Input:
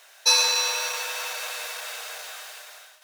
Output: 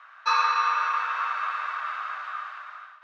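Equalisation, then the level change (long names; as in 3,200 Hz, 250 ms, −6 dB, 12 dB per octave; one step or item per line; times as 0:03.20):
high-pass with resonance 1,200 Hz, resonance Q 9.3
low-pass filter 1,900 Hz 12 dB per octave
high-frequency loss of the air 61 metres
0.0 dB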